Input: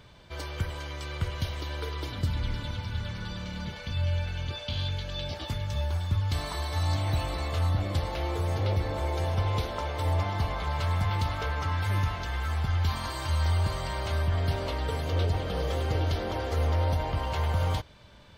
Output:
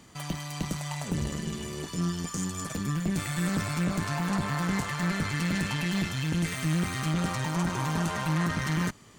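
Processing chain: tube stage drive 25 dB, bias 0.7; speed mistake 7.5 ips tape played at 15 ips; gain +3.5 dB

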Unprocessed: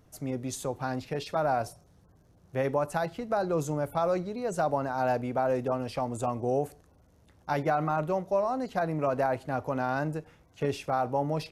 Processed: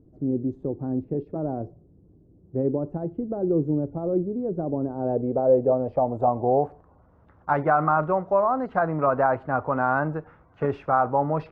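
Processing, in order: low-pass sweep 340 Hz -> 1300 Hz, 4.74–7.27; gain +3.5 dB

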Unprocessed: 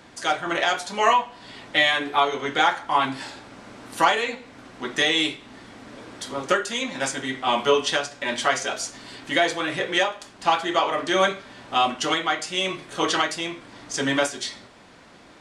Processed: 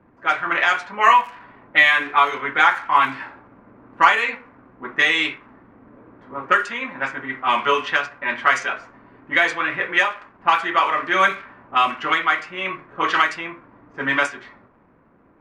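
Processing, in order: crackle 310/s -34 dBFS; band shelf 1600 Hz +11 dB; low-pass opened by the level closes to 440 Hz, open at -9 dBFS; gain -3.5 dB

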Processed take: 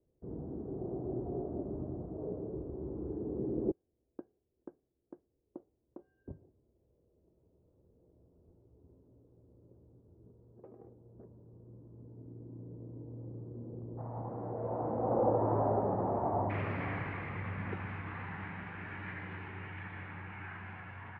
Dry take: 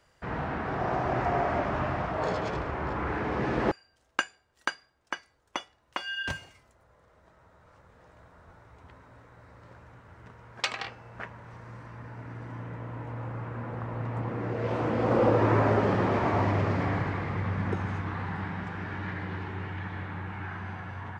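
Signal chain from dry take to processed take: ladder low-pass 440 Hz, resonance 50%, from 13.97 s 920 Hz, from 16.49 s 2900 Hz

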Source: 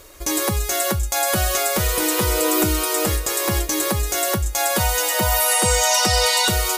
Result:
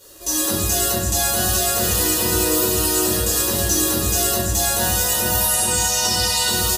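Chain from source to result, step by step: HPF 340 Hz 6 dB/oct; AGC; Butterworth band-stop 2200 Hz, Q 5.8; compressor 6:1, threshold -18 dBFS, peak gain reduction 8 dB; bell 1100 Hz -10 dB 2.5 oct; echo 0.773 s -14 dB; shoebox room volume 390 m³, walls mixed, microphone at 4.7 m; gain -5 dB

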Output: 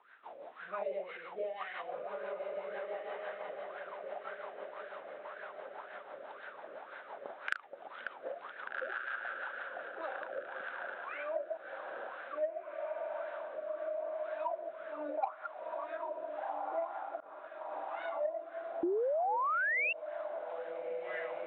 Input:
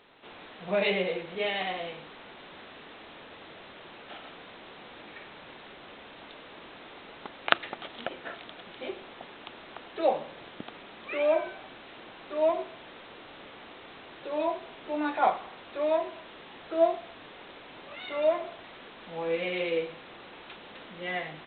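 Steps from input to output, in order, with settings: reverse delay 0.13 s, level -7.5 dB; wah 1.9 Hz 540–1600 Hz, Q 9.3; on a send: diffused feedback echo 1.558 s, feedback 41%, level -5.5 dB; on the sum: added harmonics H 7 -28 dB, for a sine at -11 dBFS; rotary speaker horn 6 Hz, later 0.85 Hz, at 9.51; 18.83–19.93 painted sound rise 330–2800 Hz -31 dBFS; compressor 3:1, threshold -53 dBFS, peak gain reduction 19.5 dB; 17.2–17.72 expander -53 dBFS; gain +15.5 dB

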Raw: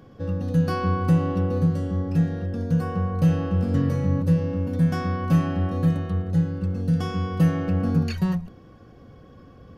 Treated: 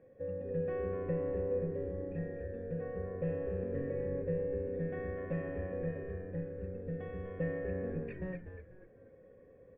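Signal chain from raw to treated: vocal tract filter e; frequency-shifting echo 0.245 s, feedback 34%, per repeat -96 Hz, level -8 dB

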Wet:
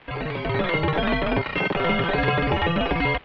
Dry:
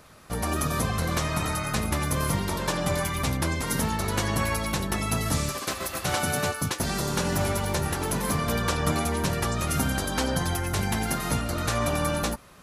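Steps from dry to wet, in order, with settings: wide varispeed 3.89×; AGC gain up to 7.5 dB; crackle 560/s -29 dBFS; mistuned SSB -170 Hz 160–3200 Hz; gain -1.5 dB

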